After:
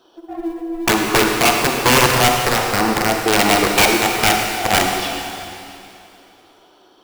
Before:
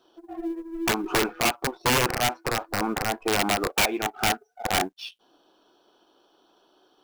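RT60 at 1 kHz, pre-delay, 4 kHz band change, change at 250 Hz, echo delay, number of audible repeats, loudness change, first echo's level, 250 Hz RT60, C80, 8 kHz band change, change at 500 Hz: 2.8 s, 35 ms, +10.0 dB, +9.5 dB, none, none, +10.0 dB, none, 2.7 s, 3.0 dB, +10.5 dB, +10.0 dB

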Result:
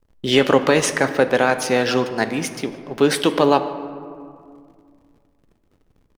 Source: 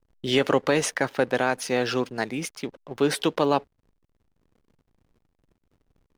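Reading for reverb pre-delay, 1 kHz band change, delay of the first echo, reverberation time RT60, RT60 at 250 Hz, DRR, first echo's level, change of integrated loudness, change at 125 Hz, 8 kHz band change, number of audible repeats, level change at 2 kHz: 4 ms, +6.5 dB, 0.149 s, 2.2 s, 2.7 s, 9.0 dB, -21.5 dB, +6.0 dB, +5.5 dB, +6.0 dB, 1, +6.5 dB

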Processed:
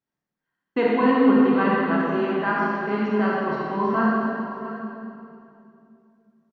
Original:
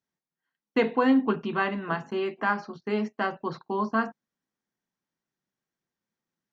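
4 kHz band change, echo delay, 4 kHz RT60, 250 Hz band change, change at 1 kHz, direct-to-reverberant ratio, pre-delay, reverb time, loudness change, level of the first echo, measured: +1.0 dB, 0.677 s, 2.5 s, +7.5 dB, +6.0 dB, -5.5 dB, 21 ms, 2.8 s, +6.0 dB, -13.5 dB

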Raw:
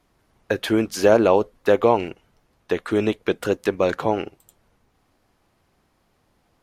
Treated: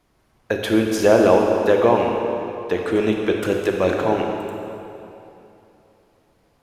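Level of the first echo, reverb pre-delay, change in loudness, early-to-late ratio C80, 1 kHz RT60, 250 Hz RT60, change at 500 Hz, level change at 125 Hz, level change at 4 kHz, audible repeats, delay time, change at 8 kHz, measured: none, 28 ms, +1.5 dB, 3.0 dB, 2.9 s, 3.0 s, +2.5 dB, +2.5 dB, +1.5 dB, none, none, +2.0 dB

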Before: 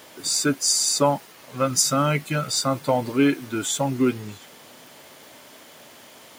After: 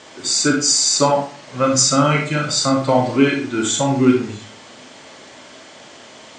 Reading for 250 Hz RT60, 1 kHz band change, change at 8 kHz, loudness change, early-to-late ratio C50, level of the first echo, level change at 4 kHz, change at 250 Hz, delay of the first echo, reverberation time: 0.50 s, +6.0 dB, +5.0 dB, +5.5 dB, 5.0 dB, none, +6.0 dB, +6.5 dB, none, 0.45 s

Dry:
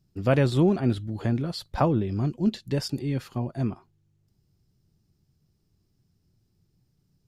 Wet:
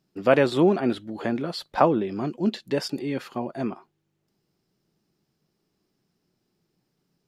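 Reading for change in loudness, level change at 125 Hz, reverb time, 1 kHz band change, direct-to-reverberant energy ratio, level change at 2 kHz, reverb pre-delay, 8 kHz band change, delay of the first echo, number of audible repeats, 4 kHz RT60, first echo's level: +1.5 dB, -8.0 dB, none, +6.0 dB, none, +5.5 dB, none, -0.5 dB, none, none, none, none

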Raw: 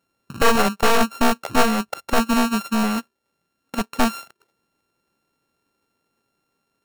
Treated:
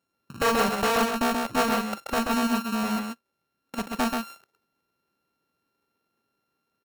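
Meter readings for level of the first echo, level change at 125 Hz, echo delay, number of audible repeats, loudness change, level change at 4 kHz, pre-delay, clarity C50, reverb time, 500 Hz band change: -14.5 dB, -5.5 dB, 43 ms, 2, -5.0 dB, -5.0 dB, none, none, none, -4.5 dB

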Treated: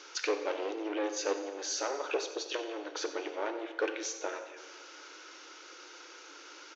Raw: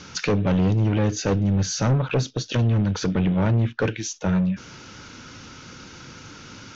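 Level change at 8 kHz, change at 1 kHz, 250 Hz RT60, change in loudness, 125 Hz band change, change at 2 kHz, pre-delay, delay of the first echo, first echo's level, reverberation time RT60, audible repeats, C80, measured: n/a, -6.0 dB, 1.5 s, -12.5 dB, under -40 dB, -6.5 dB, 26 ms, 91 ms, -14.5 dB, 1.6 s, 1, 9.5 dB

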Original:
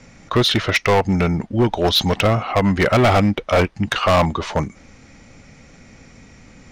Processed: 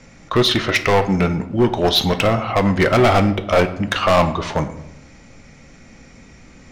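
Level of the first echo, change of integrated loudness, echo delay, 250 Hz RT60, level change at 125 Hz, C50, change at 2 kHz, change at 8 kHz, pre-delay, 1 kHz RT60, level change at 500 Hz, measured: none, +0.5 dB, none, 1.0 s, -1.0 dB, 13.0 dB, +0.5 dB, +0.5 dB, 3 ms, 0.80 s, +1.5 dB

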